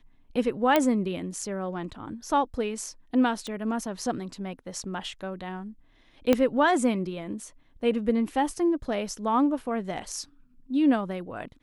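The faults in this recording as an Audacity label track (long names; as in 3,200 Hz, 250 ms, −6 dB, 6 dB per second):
0.760000	0.760000	click −8 dBFS
3.470000	3.470000	click −22 dBFS
6.330000	6.330000	click −8 dBFS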